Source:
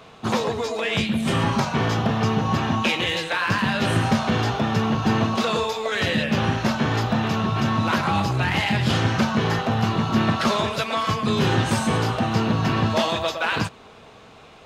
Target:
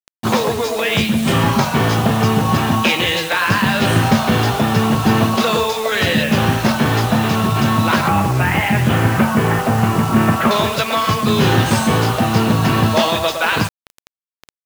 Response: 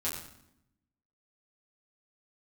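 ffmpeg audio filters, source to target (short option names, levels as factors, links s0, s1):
-filter_complex "[0:a]asettb=1/sr,asplit=3[s0][s1][s2];[s0]atrim=end=8.084[s3];[s1]atrim=start=8.08:end=10.51,asetpts=PTS-STARTPTS,afade=t=in:d=0.004:c=qsin,afade=t=out:st=2.426:d=0.004:c=qsin,lowpass=f=2600:w=0.5412,lowpass=f=2600:w=1.3066[s4];[s2]atrim=start=10.506[s5];[s3][s4]acrossfade=d=0.004:c1=hsin:c2=qsin[s6];[s6][s5]acrossfade=d=0.004:c1=qsin:c2=hsin,acrusher=bits=5:mix=0:aa=0.000001,volume=2.11"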